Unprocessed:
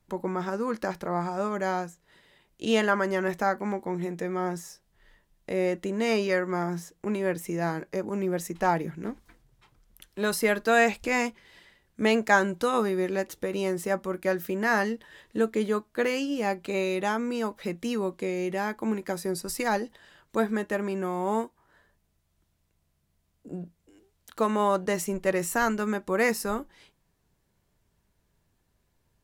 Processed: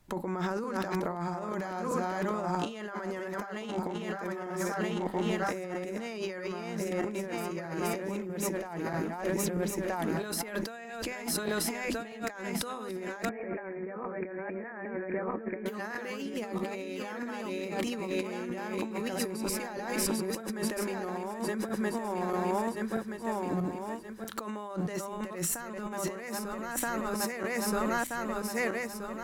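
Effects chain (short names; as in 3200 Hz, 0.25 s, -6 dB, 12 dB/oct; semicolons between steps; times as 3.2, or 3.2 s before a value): regenerating reverse delay 0.638 s, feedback 58%, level -3 dB; bell 470 Hz -2.5 dB 0.36 oct; notches 50/100/150/200/250 Hz; negative-ratio compressor -35 dBFS, ratio -1; 13.29–15.66 rippled Chebyshev low-pass 2400 Hz, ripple 3 dB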